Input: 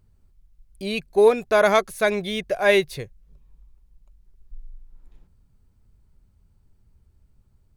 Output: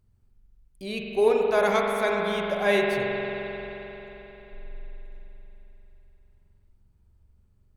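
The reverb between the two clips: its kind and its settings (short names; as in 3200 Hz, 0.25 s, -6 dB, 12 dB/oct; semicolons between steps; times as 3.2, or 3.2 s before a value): spring tank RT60 3.9 s, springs 44 ms, chirp 70 ms, DRR -1 dB; gain -6.5 dB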